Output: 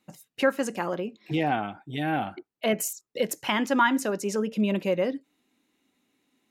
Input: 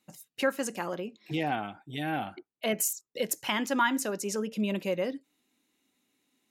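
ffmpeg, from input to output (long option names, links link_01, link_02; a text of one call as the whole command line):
ffmpeg -i in.wav -af "highshelf=frequency=3700:gain=-8,volume=5dB" out.wav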